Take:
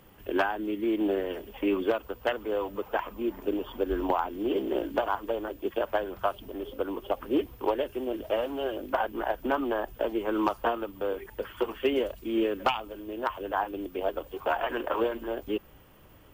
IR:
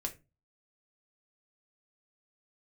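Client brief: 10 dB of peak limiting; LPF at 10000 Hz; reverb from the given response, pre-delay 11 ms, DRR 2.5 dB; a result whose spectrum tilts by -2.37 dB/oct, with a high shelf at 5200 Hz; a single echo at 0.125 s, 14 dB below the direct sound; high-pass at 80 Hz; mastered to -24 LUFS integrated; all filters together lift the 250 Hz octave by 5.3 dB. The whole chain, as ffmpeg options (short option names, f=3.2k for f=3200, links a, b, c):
-filter_complex "[0:a]highpass=80,lowpass=10k,equalizer=f=250:t=o:g=7.5,highshelf=f=5.2k:g=-3.5,alimiter=limit=-21.5dB:level=0:latency=1,aecho=1:1:125:0.2,asplit=2[a][b];[1:a]atrim=start_sample=2205,adelay=11[c];[b][c]afir=irnorm=-1:irlink=0,volume=-3dB[d];[a][d]amix=inputs=2:normalize=0,volume=5.5dB"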